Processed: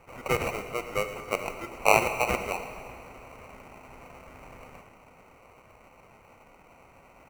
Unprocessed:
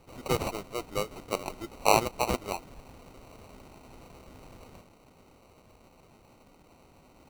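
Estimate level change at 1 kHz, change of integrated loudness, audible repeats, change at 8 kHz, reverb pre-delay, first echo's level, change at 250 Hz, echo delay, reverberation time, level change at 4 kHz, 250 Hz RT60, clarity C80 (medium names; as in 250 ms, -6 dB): +1.5 dB, +2.5 dB, 1, -0.5 dB, 32 ms, -16.0 dB, -1.5 dB, 113 ms, 2.5 s, -1.5 dB, 2.6 s, 9.0 dB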